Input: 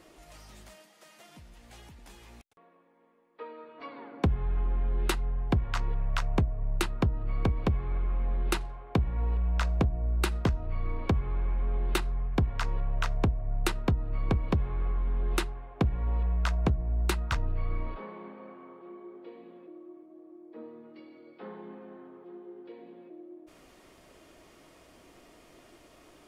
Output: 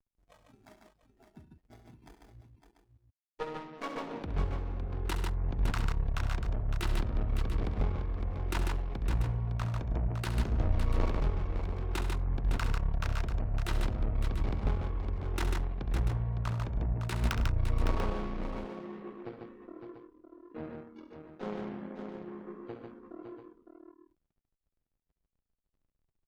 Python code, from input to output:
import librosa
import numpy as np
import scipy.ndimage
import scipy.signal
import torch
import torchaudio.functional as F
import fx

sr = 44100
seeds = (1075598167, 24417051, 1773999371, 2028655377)

p1 = fx.backlash(x, sr, play_db=-40.5)
p2 = fx.over_compress(p1, sr, threshold_db=-33.0, ratio=-1.0)
p3 = fx.cheby_harmonics(p2, sr, harmonics=(3, 4, 6, 8), levels_db=(-24, -13, -10, -30), full_scale_db=-20.0)
p4 = fx.noise_reduce_blind(p3, sr, reduce_db=17)
p5 = p4 + fx.echo_multitap(p4, sr, ms=(67, 103, 145, 559, 690), db=(-10.5, -16.5, -4.0, -7.5, -11.5), dry=0)
y = F.gain(torch.from_numpy(p5), 2.0).numpy()